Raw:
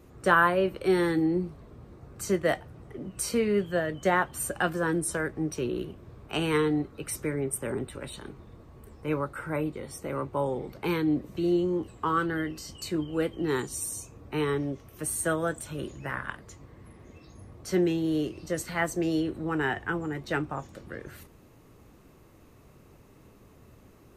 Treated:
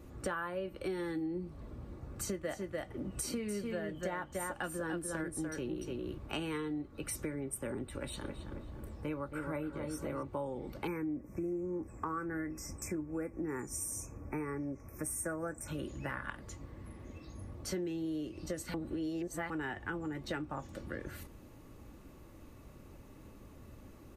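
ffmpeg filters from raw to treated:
-filter_complex "[0:a]asplit=3[a][b][c];[a]afade=t=out:st=2.34:d=0.02[d];[b]aecho=1:1:295:0.596,afade=t=in:st=2.34:d=0.02,afade=t=out:st=6.17:d=0.02[e];[c]afade=t=in:st=6.17:d=0.02[f];[d][e][f]amix=inputs=3:normalize=0,asettb=1/sr,asplit=3[g][h][i];[g]atrim=end=7.964[j];[h]atrim=start=7.96:end=10.23,asetpts=PTS-STARTPTS,afade=t=in:d=0.004:c=qsin,afade=t=out:st=2.266:d=0.004:c=qsin,asplit=2[k][l];[l]adelay=270,lowpass=f=2.1k:p=1,volume=-6.5dB,asplit=2[m][n];[n]adelay=270,lowpass=f=2.1k:p=1,volume=0.53,asplit=2[o][p];[p]adelay=270,lowpass=f=2.1k:p=1,volume=0.53,asplit=2[q][r];[r]adelay=270,lowpass=f=2.1k:p=1,volume=0.53,asplit=2[s][t];[t]adelay=270,lowpass=f=2.1k:p=1,volume=0.53,asplit=2[u][v];[v]adelay=270,lowpass=f=2.1k:p=1,volume=0.53,asplit=2[w][x];[x]adelay=270,lowpass=f=2.1k:p=1,volume=0.53[y];[k][m][o][q][s][u][w][y]amix=inputs=8:normalize=0,atrim=end_sample=100107[z];[i]atrim=start=10.226[aa];[j][z]acrossfade=d=0.004:c1=hsin:c2=qsin[ab];[ab][aa]acrossfade=d=0.004:c1=qsin:c2=hsin,asettb=1/sr,asplit=3[ac][ad][ae];[ac]atrim=end=10.874[af];[ad]atrim=start=10.87:end=15.68,asetpts=PTS-STARTPTS,afade=t=in:d=0.004:c=qsin,afade=t=out:st=4.806:d=0.004:c=qsin,asuperstop=centerf=3600:order=20:qfactor=1.4[ag];[ae]atrim=start=15.676[ah];[af][ag]acrossfade=d=0.004:c1=hsin:c2=qsin[ai];[ai][ah]acrossfade=d=0.004:c1=qsin:c2=hsin,asplit=3[aj][ak][al];[aj]atrim=end=18.742[am];[ak]atrim=start=18.738:end=19.502,asetpts=PTS-STARTPTS,areverse[an];[al]atrim=start=19.498[ao];[am][an]acrossfade=d=0.004:c1=hsin:c2=hsin[ap];[ap][ao]acrossfade=d=0.004:c1=hsin:c2=hsin,lowshelf=f=190:g=5,aecho=1:1:3.5:0.32,acompressor=threshold=-34dB:ratio=6,volume=-1.5dB"

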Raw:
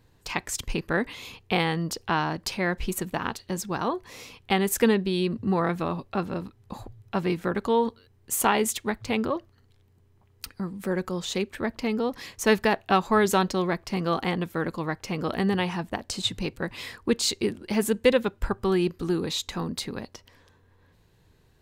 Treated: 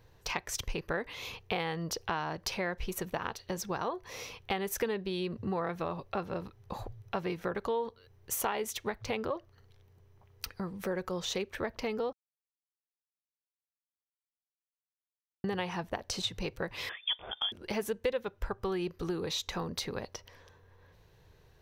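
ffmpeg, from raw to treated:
-filter_complex "[0:a]asettb=1/sr,asplit=3[a][b][c];[a]atrim=end=16.894[d];[b]atrim=start=16.89:end=17.52,asetpts=PTS-STARTPTS,afade=t=in:d=0.004:c=qsin,afade=t=out:st=0.626:d=0.004:c=qsin,lowpass=f=3.1k:t=q:w=0.5098,lowpass=f=3.1k:t=q:w=0.6013,lowpass=f=3.1k:t=q:w=0.9,lowpass=f=3.1k:t=q:w=2.563,afreqshift=-3600[e];[c]atrim=start=17.516[f];[d][e]acrossfade=d=0.004:c1=hsin:c2=qsin[g];[g][f]acrossfade=d=0.004:c1=qsin:c2=hsin,asplit=3[h][i][j];[h]atrim=end=12.13,asetpts=PTS-STARTPTS,afade=t=out:st=12.126:d=0.004:c=hsin[k];[i]atrim=start=12.13:end=15.44,asetpts=PTS-STARTPTS,volume=0[l];[j]atrim=start=15.44,asetpts=PTS-STARTPTS,afade=t=in:d=0.004:c=hsin[m];[k][l][m]concat=n=3:v=0:a=1,equalizer=f=250:t=o:w=1:g=-9,equalizer=f=500:t=o:w=1:g=4,equalizer=f=8k:t=o:w=1:g=-8,acompressor=threshold=-34dB:ratio=3,equalizer=f=5.9k:w=7.1:g=8.5,volume=1dB"

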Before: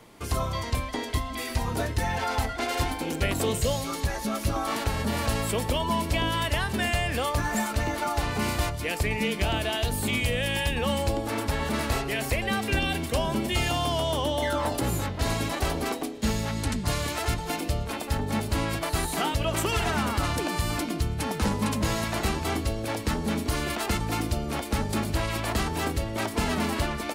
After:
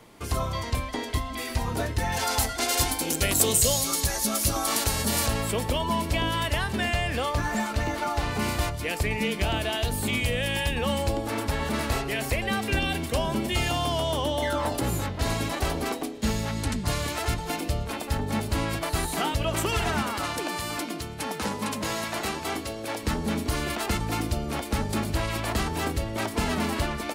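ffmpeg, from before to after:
-filter_complex "[0:a]asettb=1/sr,asplit=3[a][b][c];[a]atrim=end=2.124[d];[b]atrim=start=2.12:end=5.28,asetpts=PTS-STARTPTS,afade=t=in:d=0.004:c=qsin,afade=t=out:st=3.156:d=0.004:c=qsin,bass=f=250:g=-1,treble=f=4k:g=14[e];[c]atrim=start=5.276[f];[d][e]acrossfade=d=0.004:c1=hsin:c2=qsin[g];[g][f]acrossfade=d=0.004:c1=qsin:c2=hsin,asettb=1/sr,asplit=3[h][i][j];[h]atrim=end=6.714[k];[i]atrim=start=6.71:end=8.26,asetpts=PTS-STARTPTS,afade=t=in:d=0.004:c=qsin,afade=t=out:st=1.546:d=0.004:c=qsin,acrossover=split=6700[l][m];[m]acompressor=threshold=-45dB:ratio=4:attack=1:release=60[n];[l][n]amix=inputs=2:normalize=0[o];[j]atrim=start=8.256[p];[k][o]acrossfade=d=0.004:c1=hsin:c2=qsin[q];[q][p]acrossfade=d=0.004:c1=qsin:c2=hsin,asettb=1/sr,asplit=3[r][s][t];[r]atrim=end=20.024[u];[s]atrim=start=20.02:end=23.03,asetpts=PTS-STARTPTS,afade=t=in:d=0.004:c=qsin,afade=t=out:st=3.006:d=0.004:c=qsin,highpass=f=320:p=1[v];[t]atrim=start=23.026[w];[u][v]acrossfade=d=0.004:c1=hsin:c2=qsin[x];[x][w]acrossfade=d=0.004:c1=qsin:c2=hsin"

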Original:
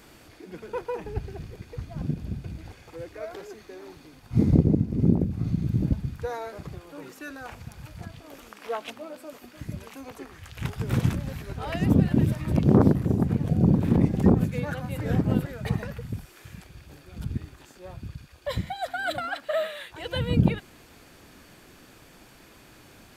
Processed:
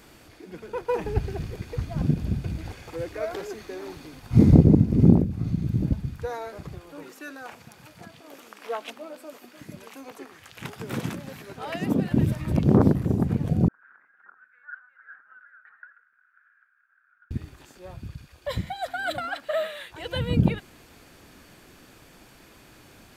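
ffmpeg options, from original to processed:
-filter_complex "[0:a]asplit=3[a][b][c];[a]afade=t=out:st=0.88:d=0.02[d];[b]acontrast=57,afade=t=in:st=0.88:d=0.02,afade=t=out:st=5.2:d=0.02[e];[c]afade=t=in:st=5.2:d=0.02[f];[d][e][f]amix=inputs=3:normalize=0,asettb=1/sr,asplit=3[g][h][i];[g]atrim=end=7.034[j];[h]atrim=start=7.03:end=12.12,asetpts=PTS-STARTPTS,afade=t=in:d=0.004:c=qsin,afade=t=out:st=5.086:d=0.004:c=qsin,highpass=220[k];[i]atrim=start=12.116[l];[j][k]acrossfade=d=0.004:c1=hsin:c2=qsin[m];[m][l]acrossfade=d=0.004:c1=qsin:c2=hsin,asettb=1/sr,asplit=3[n][o][p];[n]atrim=end=13.684[q];[o]atrim=start=13.68:end=17.31,asetpts=PTS-STARTPTS,afade=t=in:d=0.004:c=qsin,afade=t=out:st=3.626:d=0.004:c=qsin,asuperpass=centerf=1500:order=4:qfactor=5.4[r];[p]atrim=start=17.306[s];[q][r]acrossfade=d=0.004:c1=hsin:c2=qsin[t];[t][s]acrossfade=d=0.004:c1=qsin:c2=hsin"

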